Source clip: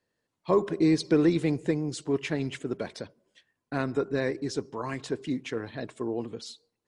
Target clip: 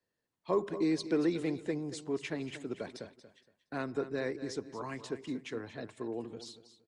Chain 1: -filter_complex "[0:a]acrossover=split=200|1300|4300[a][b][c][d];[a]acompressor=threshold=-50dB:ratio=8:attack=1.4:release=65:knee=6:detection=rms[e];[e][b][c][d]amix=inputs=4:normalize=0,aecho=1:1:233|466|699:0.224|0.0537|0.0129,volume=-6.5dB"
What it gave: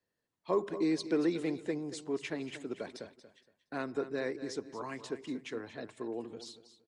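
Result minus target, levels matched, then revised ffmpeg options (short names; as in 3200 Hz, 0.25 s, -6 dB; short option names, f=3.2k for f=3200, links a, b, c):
compressor: peak gain reduction +9 dB
-filter_complex "[0:a]acrossover=split=200|1300|4300[a][b][c][d];[a]acompressor=threshold=-40dB:ratio=8:attack=1.4:release=65:knee=6:detection=rms[e];[e][b][c][d]amix=inputs=4:normalize=0,aecho=1:1:233|466|699:0.224|0.0537|0.0129,volume=-6.5dB"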